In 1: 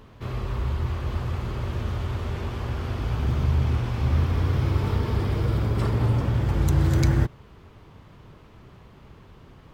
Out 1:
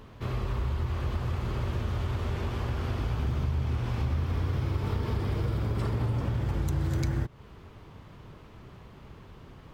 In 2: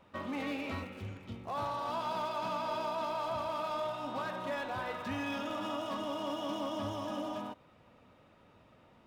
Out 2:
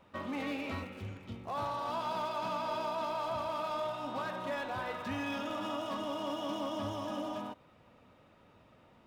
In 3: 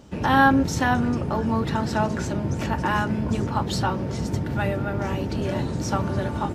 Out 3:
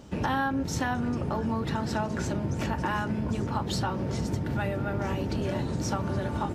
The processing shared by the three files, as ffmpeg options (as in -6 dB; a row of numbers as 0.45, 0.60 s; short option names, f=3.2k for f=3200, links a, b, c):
-af "acompressor=threshold=-26dB:ratio=4"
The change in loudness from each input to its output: -5.5, 0.0, -6.0 LU